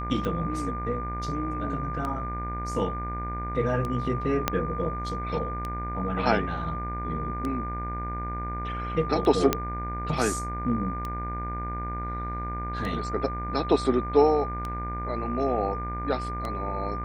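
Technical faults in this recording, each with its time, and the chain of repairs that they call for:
mains buzz 60 Hz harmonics 40 −34 dBFS
scratch tick 33 1/3 rpm −19 dBFS
whistle 1,200 Hz −33 dBFS
0:04.48: click −7 dBFS
0:09.53: click −7 dBFS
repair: click removal
hum removal 60 Hz, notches 40
notch filter 1,200 Hz, Q 30

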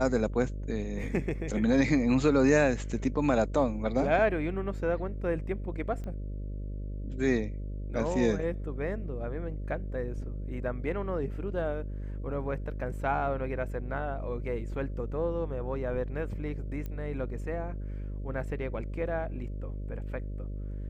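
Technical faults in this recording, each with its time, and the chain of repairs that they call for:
mains buzz 50 Hz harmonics 12 −36 dBFS
0:06.04: click −29 dBFS
0:16.86: click −25 dBFS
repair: click removal
hum removal 50 Hz, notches 12

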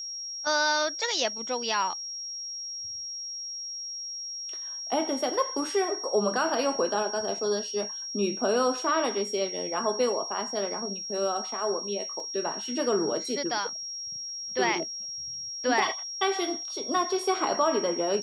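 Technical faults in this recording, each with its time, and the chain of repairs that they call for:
whistle 5,600 Hz −34 dBFS
0:12.20: drop-out 2 ms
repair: notch filter 5,600 Hz, Q 30
repair the gap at 0:12.20, 2 ms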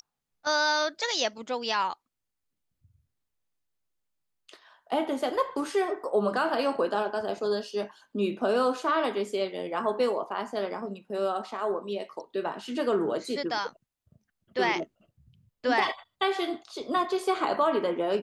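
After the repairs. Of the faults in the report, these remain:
none of them is left

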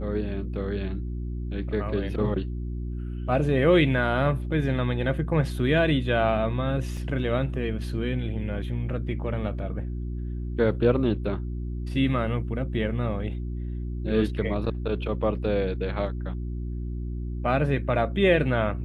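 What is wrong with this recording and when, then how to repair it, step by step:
mains hum 60 Hz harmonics 6 −31 dBFS
0:06.97: drop-out 3.2 ms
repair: hum removal 60 Hz, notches 6
repair the gap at 0:06.97, 3.2 ms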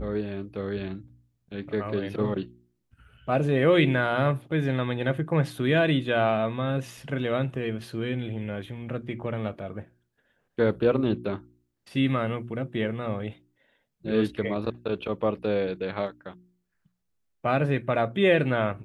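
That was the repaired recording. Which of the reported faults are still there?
none of them is left

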